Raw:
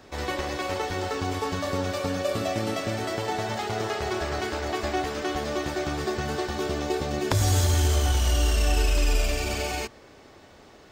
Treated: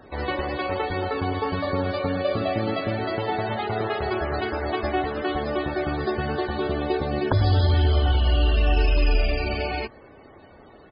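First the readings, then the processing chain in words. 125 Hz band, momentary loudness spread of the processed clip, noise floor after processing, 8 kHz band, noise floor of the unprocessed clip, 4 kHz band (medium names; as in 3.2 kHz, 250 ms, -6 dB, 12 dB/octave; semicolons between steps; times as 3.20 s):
+3.0 dB, 6 LU, -49 dBFS, under -40 dB, -51 dBFS, -1.0 dB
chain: resampled via 11.025 kHz; loudest bins only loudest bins 64; trim +3 dB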